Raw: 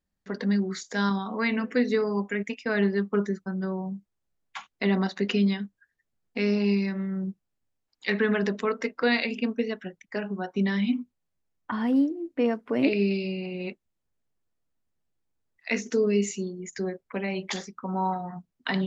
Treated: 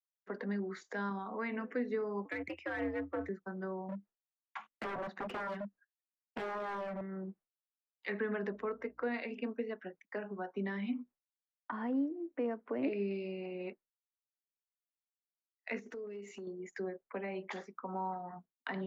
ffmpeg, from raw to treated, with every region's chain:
-filter_complex "[0:a]asettb=1/sr,asplit=3[s0][s1][s2];[s0]atrim=end=2.254[s3];[s1]atrim=start=2.25:end=3.29,asetpts=PTS-STARTPTS,afade=t=in:d=0.004:c=qsin,afade=t=out:st=1.036:d=0.004:c=qsin,equalizer=f=2100:t=o:w=0.8:g=8,aeval=exprs='clip(val(0),-1,0.0299)':c=same,afreqshift=81[s4];[s2]atrim=start=3.286[s5];[s3][s4]acrossfade=d=0.004:c1=hsin:c2=qsin[s6];[s6][s5]acrossfade=d=0.004:c1=qsin:c2=hsin,asettb=1/sr,asplit=3[s7][s8][s9];[s7]atrim=end=3.884[s10];[s8]atrim=start=3.88:end=7.01,asetpts=PTS-STARTPTS,afade=t=in:d=0.004:c=qsin,afade=t=out:st=3.126:d=0.004:c=qsin,equalizer=f=210:t=o:w=0.48:g=8.5,aeval=exprs='0.0596*(abs(mod(val(0)/0.0596+3,4)-2)-1)':c=same[s11];[s9]atrim=start=7.006[s12];[s10][s11]acrossfade=d=0.004:c1=hsin:c2=qsin[s13];[s13][s12]acrossfade=d=0.004:c1=qsin:c2=hsin,asettb=1/sr,asplit=3[s14][s15][s16];[s14]atrim=end=8.514[s17];[s15]atrim=start=8.51:end=9.14,asetpts=PTS-STARTPTS,afade=t=in:d=0.004:c=qsin,afade=t=out:st=0.626:d=0.004:c=qsin,equalizer=f=6400:w=0.38:g=-7,aeval=exprs='val(0)+0.00178*(sin(2*PI*60*n/s)+sin(2*PI*2*60*n/s)/2+sin(2*PI*3*60*n/s)/3+sin(2*PI*4*60*n/s)/4+sin(2*PI*5*60*n/s)/5)':c=same[s18];[s16]atrim=start=9.136[s19];[s17][s18]acrossfade=d=0.004:c1=hsin:c2=qsin[s20];[s20][s19]acrossfade=d=0.004:c1=qsin:c2=hsin,asettb=1/sr,asplit=3[s21][s22][s23];[s21]atrim=end=15.794[s24];[s22]atrim=start=15.79:end=16.47,asetpts=PTS-STARTPTS,afade=t=in:d=0.004:c=qsin,afade=t=out:st=0.676:d=0.004:c=qsin,acompressor=threshold=0.02:ratio=20:attack=3.2:release=140:knee=1:detection=peak,asoftclip=type=hard:threshold=0.0251[s25];[s23]atrim=start=16.466[s26];[s24][s25]acrossfade=d=0.004:c1=hsin:c2=qsin[s27];[s27][s26]acrossfade=d=0.004:c1=qsin:c2=hsin,agate=range=0.0224:threshold=0.00708:ratio=3:detection=peak,acrossover=split=310 2200:gain=0.126 1 0.112[s28][s29][s30];[s28][s29][s30]amix=inputs=3:normalize=0,acrossover=split=240[s31][s32];[s32]acompressor=threshold=0.00631:ratio=2[s33];[s31][s33]amix=inputs=2:normalize=0"

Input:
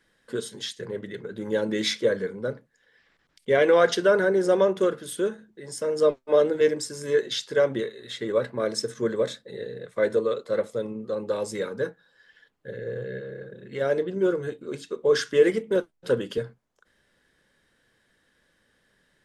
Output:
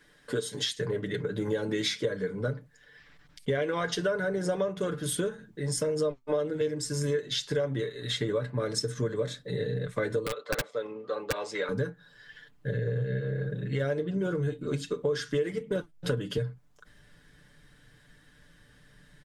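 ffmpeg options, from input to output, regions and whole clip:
-filter_complex "[0:a]asettb=1/sr,asplit=3[s0][s1][s2];[s0]atrim=end=10.264[s3];[s1]atrim=start=10.26:end=11.69,asetpts=PTS-STARTPTS,afade=t=in:d=0.004:c=qsin,afade=t=out:st=1.426:d=0.004:c=qsin,highpass=580,lowpass=3700,aeval=exprs='(mod(11.2*val(0)+1,2)-1)/11.2':c=same[s4];[s2]atrim=start=11.686[s5];[s3][s4]acrossfade=d=0.004:c1=hsin:c2=qsin[s6];[s6][s5]acrossfade=d=0.004:c1=qsin:c2=hsin,asubboost=boost=3.5:cutoff=200,aecho=1:1:6.8:0.63,acompressor=threshold=0.0251:ratio=6,volume=1.78"

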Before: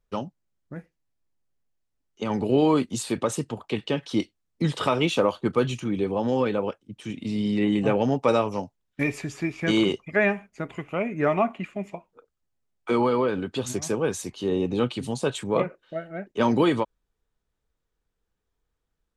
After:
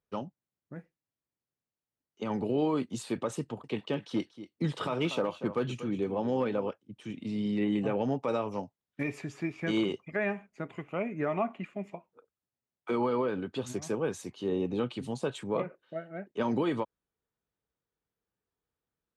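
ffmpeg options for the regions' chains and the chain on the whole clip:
-filter_complex "[0:a]asettb=1/sr,asplit=3[s0][s1][s2];[s0]atrim=end=3.404[s3];[s1]atrim=start=3.4:end=6.68,asetpts=PTS-STARTPTS,afade=t=in:d=0.004:c=qsin,afade=t=out:st=3.276:d=0.004:c=qsin,aecho=1:1:237:0.178,atrim=end_sample=144648,aeval=exprs='clip(val(0),-1,0.178)':c=same[s4];[s2]atrim=start=6.676[s5];[s3][s4]acrossfade=d=0.004:c1=hsin:c2=qsin[s6];[s6][s5]acrossfade=d=0.004:c1=qsin:c2=hsin,highpass=98,highshelf=f=3900:g=-7.5,alimiter=limit=0.188:level=0:latency=1:release=106,volume=0.531"

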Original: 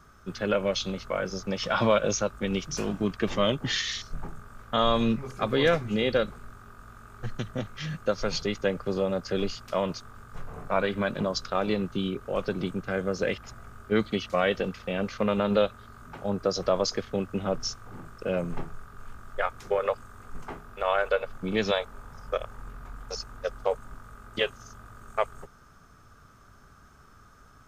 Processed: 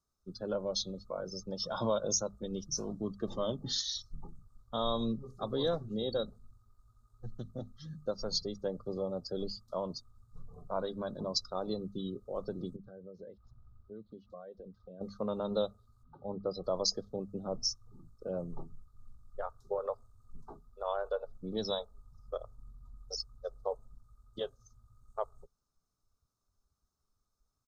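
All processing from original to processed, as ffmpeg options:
-filter_complex "[0:a]asettb=1/sr,asplit=3[s0][s1][s2];[s0]atrim=end=12.764[s3];[s1]atrim=start=12.76:end=15.01,asetpts=PTS-STARTPTS,afade=t=in:d=0.004:c=qsin,afade=t=out:st=2.246:d=0.004:c=qsin,acompressor=threshold=0.0126:ratio=3:attack=3.2:release=140:knee=1:detection=peak,lowpass=3100[s4];[s2]atrim=start=15.006[s5];[s3][s4]acrossfade=d=0.004:c1=hsin:c2=qsin[s6];[s6][s5]acrossfade=d=0.004:c1=qsin:c2=hsin,asettb=1/sr,asplit=3[s7][s8][s9];[s7]atrim=end=16.034[s10];[s8]atrim=start=16.03:end=16.64,asetpts=PTS-STARTPTS,afade=t=in:d=0.004:c=qsin,afade=t=out:st=0.606:d=0.004:c=qsin,lowpass=f=3700:w=0.5412,lowpass=f=3700:w=1.3066,bandreject=f=650:w=13[s11];[s9]atrim=start=16.636[s12];[s10][s11]acrossfade=d=0.004:c1=hsin:c2=qsin[s13];[s13][s12]acrossfade=d=0.004:c1=qsin:c2=hsin,bandreject=f=50:t=h:w=6,bandreject=f=100:t=h:w=6,bandreject=f=150:t=h:w=6,bandreject=f=200:t=h:w=6,bandreject=f=250:t=h:w=6,afftdn=nr=22:nf=-36,firequalizer=gain_entry='entry(1000,0);entry(2400,-29);entry(3800,9)':delay=0.05:min_phase=1,volume=0.376"

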